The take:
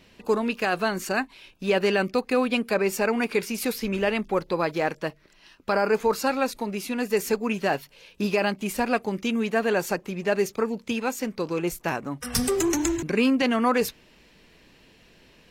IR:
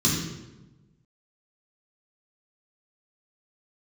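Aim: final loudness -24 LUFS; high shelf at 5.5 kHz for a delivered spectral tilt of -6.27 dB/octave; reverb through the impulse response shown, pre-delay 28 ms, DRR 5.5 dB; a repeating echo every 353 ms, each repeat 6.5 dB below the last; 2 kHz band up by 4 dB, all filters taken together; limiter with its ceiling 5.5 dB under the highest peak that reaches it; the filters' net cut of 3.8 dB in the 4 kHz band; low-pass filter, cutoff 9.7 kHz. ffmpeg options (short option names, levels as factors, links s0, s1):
-filter_complex "[0:a]lowpass=9700,equalizer=f=2000:t=o:g=8,equalizer=f=4000:t=o:g=-6,highshelf=f=5500:g=-9,alimiter=limit=0.188:level=0:latency=1,aecho=1:1:353|706|1059|1412|1765|2118:0.473|0.222|0.105|0.0491|0.0231|0.0109,asplit=2[s0][s1];[1:a]atrim=start_sample=2205,adelay=28[s2];[s1][s2]afir=irnorm=-1:irlink=0,volume=0.126[s3];[s0][s3]amix=inputs=2:normalize=0,volume=0.631"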